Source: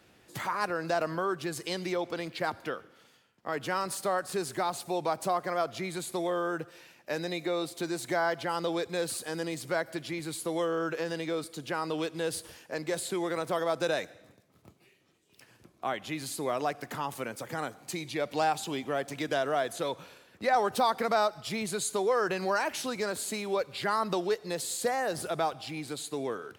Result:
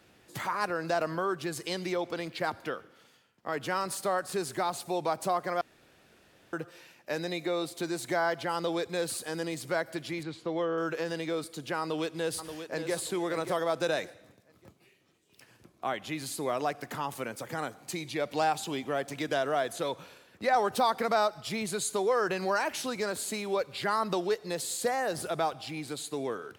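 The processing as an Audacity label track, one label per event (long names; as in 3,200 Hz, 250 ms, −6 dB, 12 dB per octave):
5.610000	6.530000	fill with room tone
10.230000	10.780000	high-frequency loss of the air 190 metres
11.800000	12.940000	delay throw 580 ms, feedback 30%, level −9 dB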